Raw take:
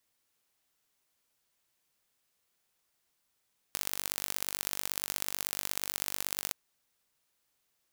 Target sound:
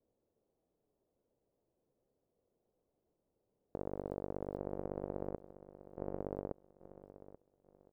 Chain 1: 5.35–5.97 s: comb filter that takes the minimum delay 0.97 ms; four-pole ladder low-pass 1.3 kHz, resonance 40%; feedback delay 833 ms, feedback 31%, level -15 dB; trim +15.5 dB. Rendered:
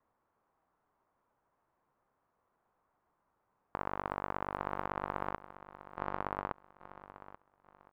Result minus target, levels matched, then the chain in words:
1 kHz band +10.5 dB
5.35–5.97 s: comb filter that takes the minimum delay 0.97 ms; four-pole ladder low-pass 610 Hz, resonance 40%; feedback delay 833 ms, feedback 31%, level -15 dB; trim +15.5 dB

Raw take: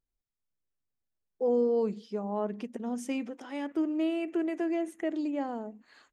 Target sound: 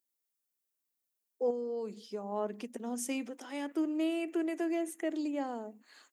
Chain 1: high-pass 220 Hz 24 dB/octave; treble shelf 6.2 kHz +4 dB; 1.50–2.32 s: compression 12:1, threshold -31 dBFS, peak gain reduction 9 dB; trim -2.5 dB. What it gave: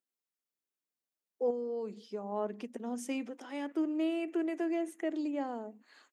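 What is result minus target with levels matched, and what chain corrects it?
8 kHz band -7.5 dB
high-pass 220 Hz 24 dB/octave; treble shelf 6.2 kHz +16 dB; 1.50–2.32 s: compression 12:1, threshold -31 dBFS, peak gain reduction 9 dB; trim -2.5 dB

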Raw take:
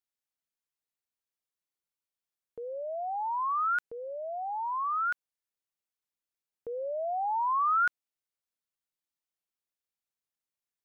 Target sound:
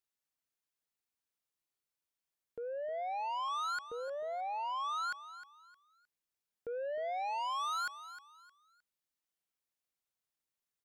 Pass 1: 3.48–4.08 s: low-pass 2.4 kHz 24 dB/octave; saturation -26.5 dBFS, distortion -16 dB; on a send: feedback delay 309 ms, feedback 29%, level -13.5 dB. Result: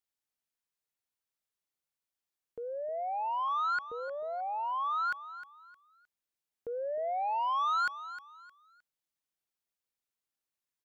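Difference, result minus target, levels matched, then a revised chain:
saturation: distortion -8 dB
3.48–4.08 s: low-pass 2.4 kHz 24 dB/octave; saturation -35 dBFS, distortion -8 dB; on a send: feedback delay 309 ms, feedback 29%, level -13.5 dB

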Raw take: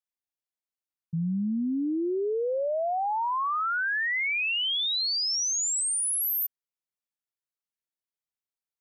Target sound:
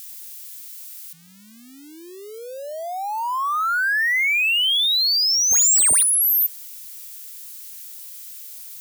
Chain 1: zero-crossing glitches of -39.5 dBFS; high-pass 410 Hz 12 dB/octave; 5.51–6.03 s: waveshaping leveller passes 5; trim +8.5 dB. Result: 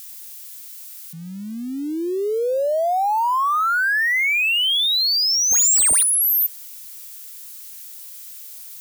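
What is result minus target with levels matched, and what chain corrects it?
500 Hz band +13.0 dB
zero-crossing glitches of -39.5 dBFS; high-pass 1.2 kHz 12 dB/octave; 5.51–6.03 s: waveshaping leveller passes 5; trim +8.5 dB

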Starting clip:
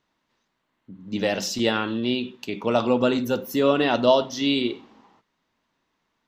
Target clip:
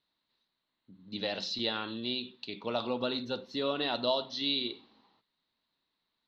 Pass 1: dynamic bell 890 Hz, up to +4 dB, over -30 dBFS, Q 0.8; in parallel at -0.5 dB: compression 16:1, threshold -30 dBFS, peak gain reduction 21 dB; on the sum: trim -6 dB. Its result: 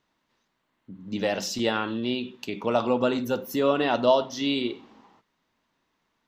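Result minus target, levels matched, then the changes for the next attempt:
4 kHz band -7.5 dB
add after dynamic bell: four-pole ladder low-pass 4.3 kHz, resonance 80%

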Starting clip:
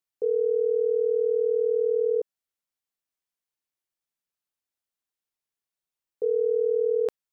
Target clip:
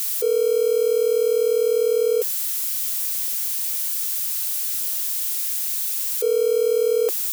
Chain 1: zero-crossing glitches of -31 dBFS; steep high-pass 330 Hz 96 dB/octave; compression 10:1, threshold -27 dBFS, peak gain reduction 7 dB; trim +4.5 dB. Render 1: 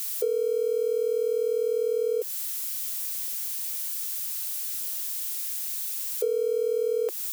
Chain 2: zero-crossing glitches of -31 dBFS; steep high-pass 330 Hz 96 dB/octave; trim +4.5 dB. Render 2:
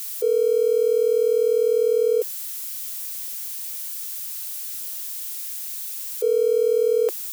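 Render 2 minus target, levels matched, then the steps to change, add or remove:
zero-crossing glitches: distortion -7 dB
change: zero-crossing glitches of -24 dBFS

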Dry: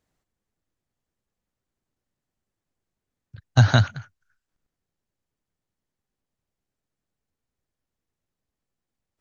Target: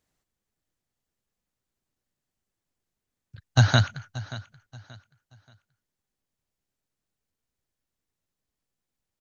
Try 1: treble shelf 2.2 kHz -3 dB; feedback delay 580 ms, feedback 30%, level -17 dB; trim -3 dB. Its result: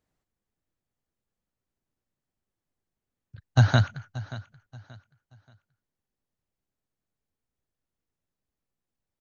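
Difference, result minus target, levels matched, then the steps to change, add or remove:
4 kHz band -5.0 dB
change: treble shelf 2.2 kHz +5.5 dB

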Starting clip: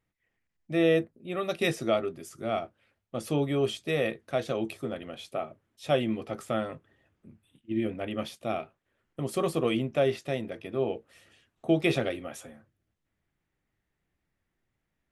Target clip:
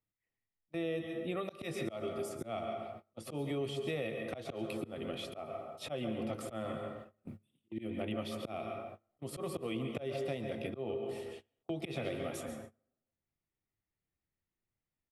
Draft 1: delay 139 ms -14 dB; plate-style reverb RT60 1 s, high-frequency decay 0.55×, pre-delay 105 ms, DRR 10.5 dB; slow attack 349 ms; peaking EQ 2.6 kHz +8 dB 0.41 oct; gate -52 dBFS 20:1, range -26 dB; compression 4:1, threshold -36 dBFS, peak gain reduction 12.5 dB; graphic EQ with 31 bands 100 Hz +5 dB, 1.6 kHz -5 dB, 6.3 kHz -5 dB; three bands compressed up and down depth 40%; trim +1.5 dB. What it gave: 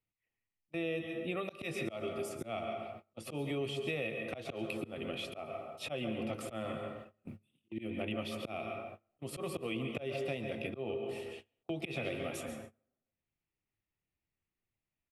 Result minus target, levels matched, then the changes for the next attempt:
2 kHz band +4.0 dB
remove: peaking EQ 2.6 kHz +8 dB 0.41 oct

